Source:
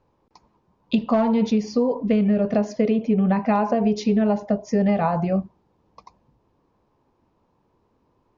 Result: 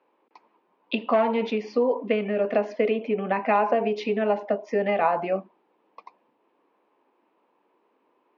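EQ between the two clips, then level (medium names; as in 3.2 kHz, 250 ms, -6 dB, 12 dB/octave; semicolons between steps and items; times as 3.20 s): high-pass 290 Hz 24 dB/octave; resonant low-pass 2.6 kHz, resonance Q 1.9; 0.0 dB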